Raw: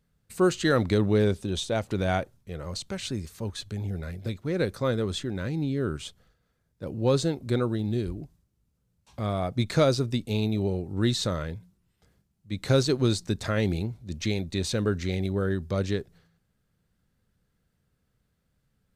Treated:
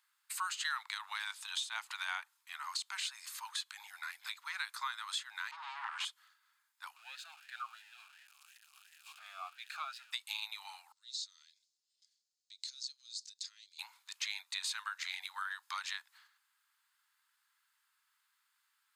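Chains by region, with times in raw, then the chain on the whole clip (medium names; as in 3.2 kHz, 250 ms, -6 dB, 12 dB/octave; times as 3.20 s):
5.51–6.05 s: comb filter that takes the minimum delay 9.7 ms + tape spacing loss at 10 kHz 22 dB + level flattener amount 70%
6.96–10.13 s: zero-crossing glitches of -24 dBFS + talking filter a-e 2.8 Hz
10.92–13.79 s: compression 12:1, threshold -34 dBFS + Butterworth band-pass 5.4 kHz, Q 1.8
whole clip: steep high-pass 900 Hz 72 dB/octave; band-stop 5.8 kHz, Q 12; compression 3:1, threshold -43 dBFS; trim +5 dB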